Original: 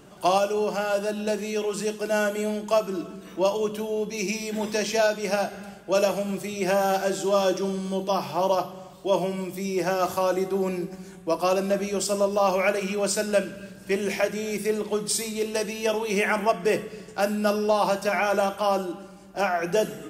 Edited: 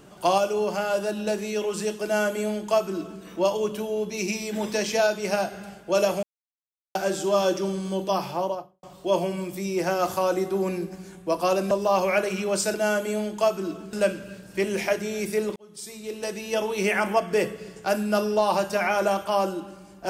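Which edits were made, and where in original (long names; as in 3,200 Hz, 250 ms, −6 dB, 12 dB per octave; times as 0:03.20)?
0:02.04–0:03.23: duplicate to 0:13.25
0:06.23–0:06.95: silence
0:08.22–0:08.83: fade out and dull
0:11.71–0:12.22: remove
0:14.88–0:16.01: fade in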